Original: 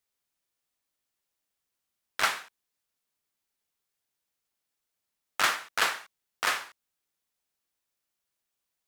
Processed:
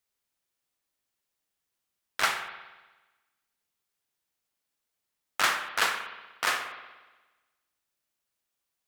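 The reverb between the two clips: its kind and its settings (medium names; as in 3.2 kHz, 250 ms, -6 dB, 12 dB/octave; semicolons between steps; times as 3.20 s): spring tank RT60 1.2 s, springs 59 ms, chirp 80 ms, DRR 7.5 dB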